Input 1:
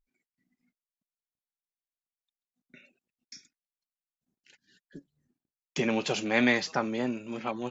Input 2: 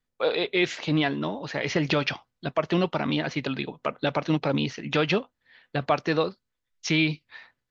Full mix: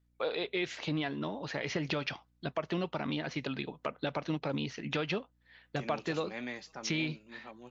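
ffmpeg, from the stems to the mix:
ffmpeg -i stem1.wav -i stem2.wav -filter_complex "[0:a]volume=-16.5dB[link_01];[1:a]acompressor=threshold=-31dB:ratio=2,volume=-3.5dB[link_02];[link_01][link_02]amix=inputs=2:normalize=0,aeval=exprs='val(0)+0.000282*(sin(2*PI*60*n/s)+sin(2*PI*2*60*n/s)/2+sin(2*PI*3*60*n/s)/3+sin(2*PI*4*60*n/s)/4+sin(2*PI*5*60*n/s)/5)':channel_layout=same" out.wav

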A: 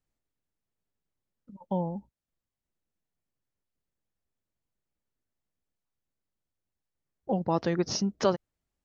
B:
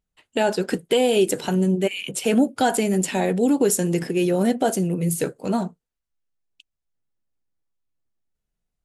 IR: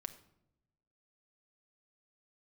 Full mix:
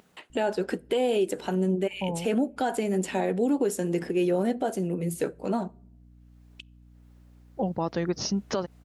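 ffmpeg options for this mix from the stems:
-filter_complex "[0:a]aeval=exprs='val(0)+0.00224*(sin(2*PI*60*n/s)+sin(2*PI*2*60*n/s)/2+sin(2*PI*3*60*n/s)/3+sin(2*PI*4*60*n/s)/4+sin(2*PI*5*60*n/s)/5)':channel_layout=same,adelay=300,volume=1dB[link_01];[1:a]acompressor=mode=upward:threshold=-26dB:ratio=2.5,highpass=210,highshelf=frequency=3200:gain=-10,volume=-3.5dB,asplit=3[link_02][link_03][link_04];[link_03]volume=-13dB[link_05];[link_04]apad=whole_len=403215[link_06];[link_01][link_06]sidechaincompress=threshold=-38dB:ratio=8:attack=47:release=118[link_07];[2:a]atrim=start_sample=2205[link_08];[link_05][link_08]afir=irnorm=-1:irlink=0[link_09];[link_07][link_02][link_09]amix=inputs=3:normalize=0,alimiter=limit=-16.5dB:level=0:latency=1:release=216"

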